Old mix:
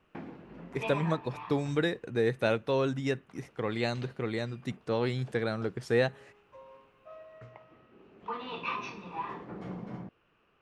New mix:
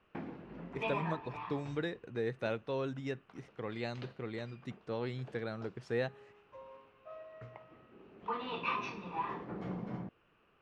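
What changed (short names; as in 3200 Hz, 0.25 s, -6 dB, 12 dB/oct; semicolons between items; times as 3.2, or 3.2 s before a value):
speech -8.0 dB; master: add air absorption 66 m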